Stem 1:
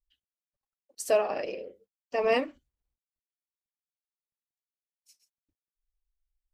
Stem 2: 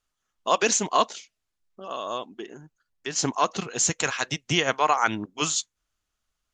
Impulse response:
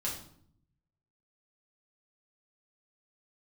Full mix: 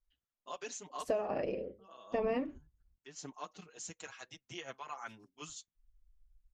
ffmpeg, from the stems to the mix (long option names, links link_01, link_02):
-filter_complex "[0:a]lowpass=frequency=1000:poles=1,asubboost=boost=5.5:cutoff=240,volume=2dB[link_01];[1:a]asplit=2[link_02][link_03];[link_03]adelay=5.5,afreqshift=0.42[link_04];[link_02][link_04]amix=inputs=2:normalize=1,volume=-19.5dB[link_05];[link_01][link_05]amix=inputs=2:normalize=0,acompressor=threshold=-29dB:ratio=12"